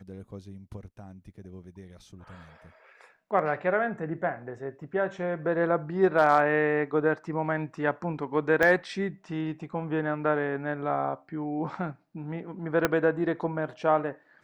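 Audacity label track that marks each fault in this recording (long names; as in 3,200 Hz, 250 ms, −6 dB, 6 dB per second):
8.630000	8.630000	click −11 dBFS
12.850000	12.850000	click −8 dBFS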